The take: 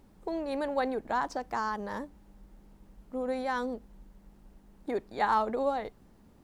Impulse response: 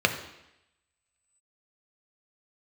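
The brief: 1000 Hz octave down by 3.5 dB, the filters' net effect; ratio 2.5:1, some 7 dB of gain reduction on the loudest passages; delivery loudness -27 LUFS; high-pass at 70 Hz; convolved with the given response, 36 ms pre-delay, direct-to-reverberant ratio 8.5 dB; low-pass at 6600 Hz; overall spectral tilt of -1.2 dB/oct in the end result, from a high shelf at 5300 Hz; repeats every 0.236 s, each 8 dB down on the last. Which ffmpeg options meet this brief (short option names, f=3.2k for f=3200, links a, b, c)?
-filter_complex "[0:a]highpass=70,lowpass=6.6k,equalizer=f=1k:t=o:g=-4,highshelf=f=5.3k:g=-9,acompressor=threshold=-36dB:ratio=2.5,aecho=1:1:236|472|708|944|1180:0.398|0.159|0.0637|0.0255|0.0102,asplit=2[a][b];[1:a]atrim=start_sample=2205,adelay=36[c];[b][c]afir=irnorm=-1:irlink=0,volume=-23.5dB[d];[a][d]amix=inputs=2:normalize=0,volume=12dB"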